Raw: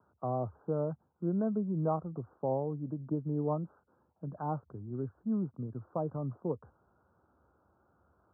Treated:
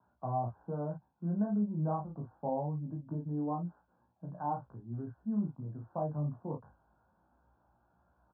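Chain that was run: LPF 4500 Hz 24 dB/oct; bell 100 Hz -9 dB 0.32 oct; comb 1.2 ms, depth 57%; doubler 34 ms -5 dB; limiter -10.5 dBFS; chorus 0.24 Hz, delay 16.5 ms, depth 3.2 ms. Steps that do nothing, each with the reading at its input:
LPF 4500 Hz: input band ends at 1300 Hz; limiter -10.5 dBFS: input peak -18.0 dBFS

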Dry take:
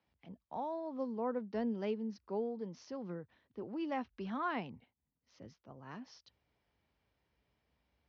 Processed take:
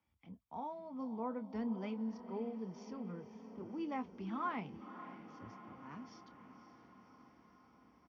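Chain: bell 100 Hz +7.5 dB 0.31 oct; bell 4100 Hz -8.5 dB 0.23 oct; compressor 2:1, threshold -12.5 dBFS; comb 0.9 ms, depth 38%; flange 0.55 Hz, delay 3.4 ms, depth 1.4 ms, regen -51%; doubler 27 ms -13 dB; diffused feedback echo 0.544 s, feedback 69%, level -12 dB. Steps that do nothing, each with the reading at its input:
compressor, threshold -12.5 dBFS: input peak -25.0 dBFS

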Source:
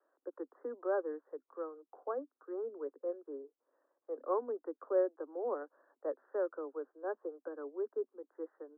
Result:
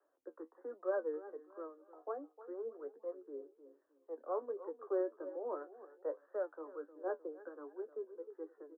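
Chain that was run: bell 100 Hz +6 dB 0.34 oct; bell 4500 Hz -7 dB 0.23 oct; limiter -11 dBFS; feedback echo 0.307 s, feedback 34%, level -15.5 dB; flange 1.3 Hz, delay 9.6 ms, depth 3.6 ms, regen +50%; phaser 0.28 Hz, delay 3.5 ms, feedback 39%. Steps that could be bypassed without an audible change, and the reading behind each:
bell 100 Hz: input band starts at 230 Hz; bell 4500 Hz: input band ends at 1400 Hz; limiter -11 dBFS: input peak -20.5 dBFS

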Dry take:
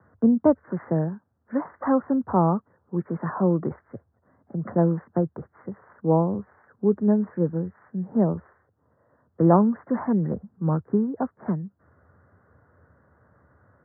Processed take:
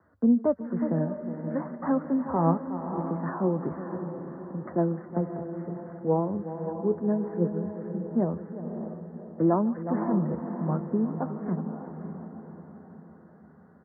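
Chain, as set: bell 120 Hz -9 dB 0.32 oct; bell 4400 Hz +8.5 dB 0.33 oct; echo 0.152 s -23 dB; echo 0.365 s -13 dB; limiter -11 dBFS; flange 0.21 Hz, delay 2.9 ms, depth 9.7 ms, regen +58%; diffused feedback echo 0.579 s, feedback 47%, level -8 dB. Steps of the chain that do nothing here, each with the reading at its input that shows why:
bell 4400 Hz: input band ends at 1200 Hz

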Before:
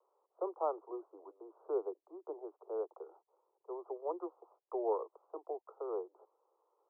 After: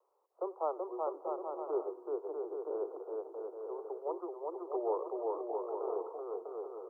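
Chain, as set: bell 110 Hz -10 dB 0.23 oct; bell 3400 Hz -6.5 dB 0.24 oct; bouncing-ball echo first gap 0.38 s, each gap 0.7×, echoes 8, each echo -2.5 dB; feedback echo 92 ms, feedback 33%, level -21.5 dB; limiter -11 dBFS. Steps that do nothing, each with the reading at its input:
bell 110 Hz: input band starts at 290 Hz; bell 3400 Hz: input band ends at 1300 Hz; limiter -11 dBFS: input peak -22.5 dBFS

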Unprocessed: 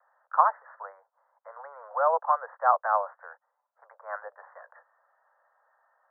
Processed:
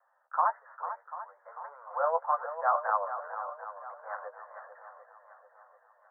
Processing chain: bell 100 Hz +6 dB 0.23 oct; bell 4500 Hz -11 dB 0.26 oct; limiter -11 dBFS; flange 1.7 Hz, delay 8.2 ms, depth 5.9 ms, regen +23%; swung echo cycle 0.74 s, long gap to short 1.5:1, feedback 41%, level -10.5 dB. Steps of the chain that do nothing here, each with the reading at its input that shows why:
bell 100 Hz: input band starts at 450 Hz; bell 4500 Hz: input band ends at 1800 Hz

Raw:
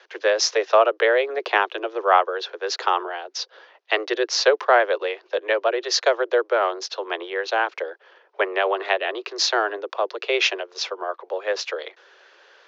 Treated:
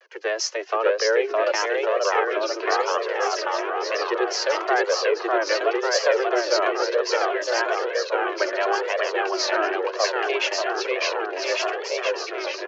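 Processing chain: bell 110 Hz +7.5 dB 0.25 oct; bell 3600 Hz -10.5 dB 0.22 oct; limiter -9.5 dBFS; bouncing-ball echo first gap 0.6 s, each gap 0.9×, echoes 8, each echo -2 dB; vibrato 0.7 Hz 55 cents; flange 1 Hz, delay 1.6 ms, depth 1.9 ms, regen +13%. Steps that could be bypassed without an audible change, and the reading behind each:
bell 110 Hz: input band starts at 290 Hz

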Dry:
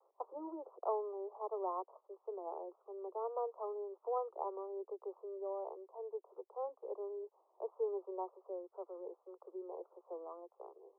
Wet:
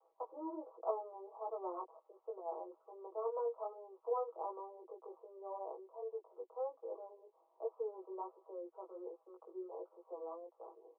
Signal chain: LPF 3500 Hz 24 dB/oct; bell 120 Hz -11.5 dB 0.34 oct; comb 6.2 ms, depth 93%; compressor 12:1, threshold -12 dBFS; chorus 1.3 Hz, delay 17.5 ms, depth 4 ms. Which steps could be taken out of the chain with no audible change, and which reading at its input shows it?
LPF 3500 Hz: input band ends at 1300 Hz; bell 120 Hz: input band starts at 320 Hz; compressor, threshold -12 dBFS: input peak -21.0 dBFS

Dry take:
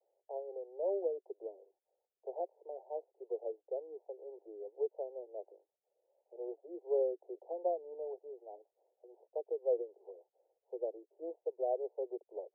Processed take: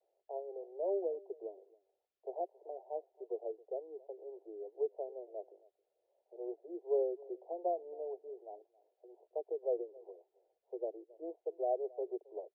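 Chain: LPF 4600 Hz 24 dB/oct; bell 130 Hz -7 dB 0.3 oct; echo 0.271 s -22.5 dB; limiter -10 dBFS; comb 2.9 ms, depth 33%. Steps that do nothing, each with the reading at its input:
LPF 4600 Hz: input band ends at 910 Hz; bell 130 Hz: input band starts at 300 Hz; limiter -10 dBFS: input peak -22.5 dBFS

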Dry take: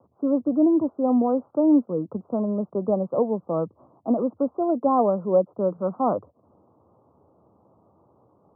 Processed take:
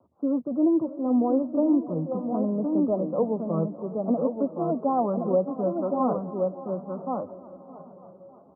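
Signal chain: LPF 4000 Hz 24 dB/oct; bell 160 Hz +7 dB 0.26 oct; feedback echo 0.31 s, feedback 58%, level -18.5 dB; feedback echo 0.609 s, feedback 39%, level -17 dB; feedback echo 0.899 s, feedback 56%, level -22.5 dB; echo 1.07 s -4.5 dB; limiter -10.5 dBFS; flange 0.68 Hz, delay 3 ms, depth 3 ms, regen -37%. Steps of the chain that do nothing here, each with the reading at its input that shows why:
LPF 4000 Hz: input band ends at 1400 Hz

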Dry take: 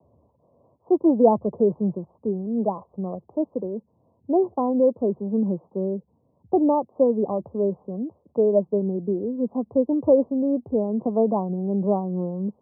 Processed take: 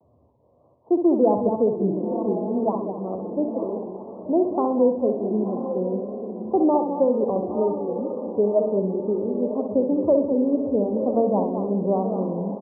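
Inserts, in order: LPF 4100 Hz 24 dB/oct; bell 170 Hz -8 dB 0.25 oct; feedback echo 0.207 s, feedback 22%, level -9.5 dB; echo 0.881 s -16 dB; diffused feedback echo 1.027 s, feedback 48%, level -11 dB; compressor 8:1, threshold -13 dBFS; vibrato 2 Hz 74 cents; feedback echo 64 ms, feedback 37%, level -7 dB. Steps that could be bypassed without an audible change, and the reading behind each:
LPF 4100 Hz: input band ends at 1200 Hz

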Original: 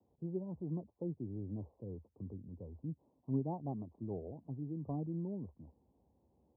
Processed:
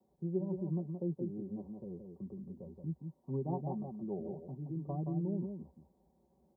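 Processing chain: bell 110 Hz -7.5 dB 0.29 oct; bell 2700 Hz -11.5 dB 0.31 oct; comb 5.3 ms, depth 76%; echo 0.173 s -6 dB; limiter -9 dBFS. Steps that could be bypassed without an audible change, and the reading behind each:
bell 2700 Hz: input band ends at 960 Hz; limiter -9 dBFS: input peak -23.5 dBFS

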